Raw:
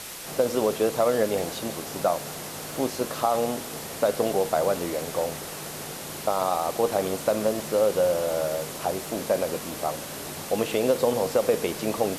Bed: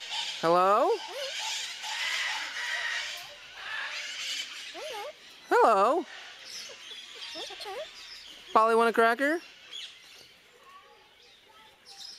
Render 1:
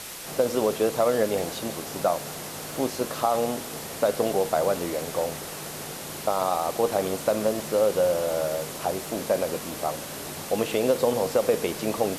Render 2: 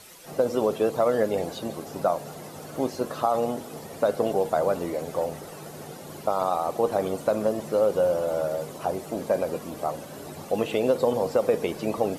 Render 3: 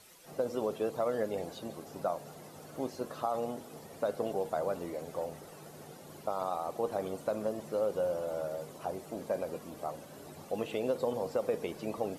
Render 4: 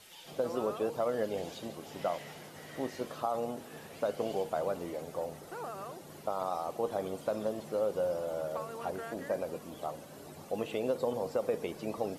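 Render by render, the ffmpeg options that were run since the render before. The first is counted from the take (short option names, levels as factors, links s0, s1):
-af anull
-af "afftdn=nr=12:nf=-37"
-af "volume=0.335"
-filter_complex "[1:a]volume=0.0944[s0];[0:a][s0]amix=inputs=2:normalize=0"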